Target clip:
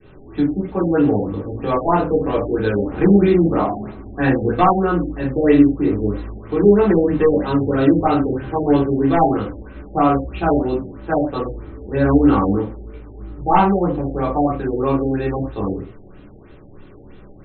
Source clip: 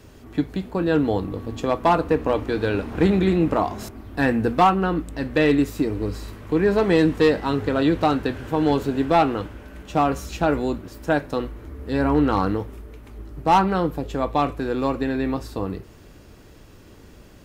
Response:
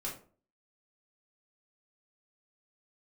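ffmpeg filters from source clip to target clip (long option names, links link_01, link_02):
-filter_complex "[0:a]adynamicequalizer=threshold=0.0316:dfrequency=930:dqfactor=1.1:tfrequency=930:tqfactor=1.1:attack=5:release=100:ratio=0.375:range=2:mode=cutabove:tftype=bell[link_01];[1:a]atrim=start_sample=2205,atrim=end_sample=6174[link_02];[link_01][link_02]afir=irnorm=-1:irlink=0,afftfilt=real='re*lt(b*sr/1024,820*pow(4300/820,0.5+0.5*sin(2*PI*3.1*pts/sr)))':imag='im*lt(b*sr/1024,820*pow(4300/820,0.5+0.5*sin(2*PI*3.1*pts/sr)))':win_size=1024:overlap=0.75,volume=2.5dB"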